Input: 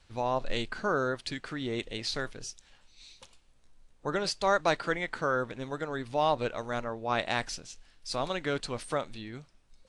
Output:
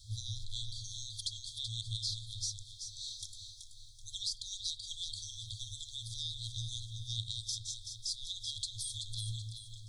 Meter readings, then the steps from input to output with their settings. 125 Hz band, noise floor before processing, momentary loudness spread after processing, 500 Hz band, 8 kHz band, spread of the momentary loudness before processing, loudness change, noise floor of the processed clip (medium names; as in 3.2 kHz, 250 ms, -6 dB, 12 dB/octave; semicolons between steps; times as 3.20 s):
-1.5 dB, -62 dBFS, 7 LU, under -40 dB, +4.0 dB, 13 LU, -7.5 dB, -52 dBFS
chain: spring tank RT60 1.5 s, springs 32/43 ms, DRR 10.5 dB; FFT band-reject 110–3200 Hz; tone controls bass -6 dB, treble +5 dB; compression 4:1, threshold -46 dBFS, peak gain reduction 17.5 dB; peaking EQ 110 Hz +13 dB 0.79 oct; on a send: echo whose repeats swap between lows and highs 190 ms, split 2.2 kHz, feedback 63%, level -3 dB; on the sum: trim +8 dB